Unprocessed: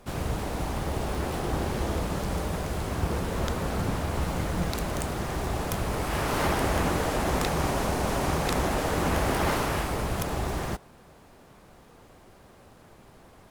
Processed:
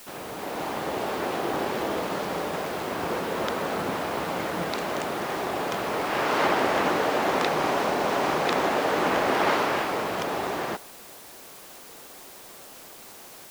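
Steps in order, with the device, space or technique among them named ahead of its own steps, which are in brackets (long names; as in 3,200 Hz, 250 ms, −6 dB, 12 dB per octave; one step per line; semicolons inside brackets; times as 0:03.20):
dictaphone (band-pass filter 310–4,300 Hz; automatic gain control gain up to 7 dB; tape wow and flutter; white noise bed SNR 19 dB)
level −2 dB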